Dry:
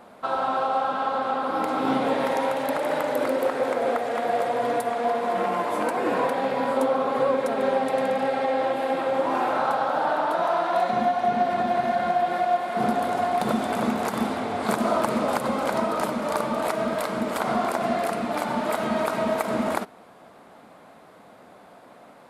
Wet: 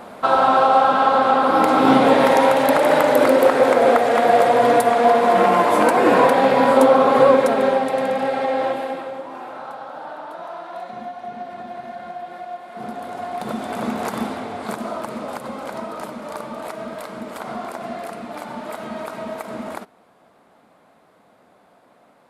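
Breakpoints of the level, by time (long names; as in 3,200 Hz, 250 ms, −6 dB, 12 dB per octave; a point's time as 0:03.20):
0:07.32 +10 dB
0:07.90 +3 dB
0:08.69 +3 dB
0:09.28 −10 dB
0:12.63 −10 dB
0:14.09 +1.5 dB
0:14.95 −5.5 dB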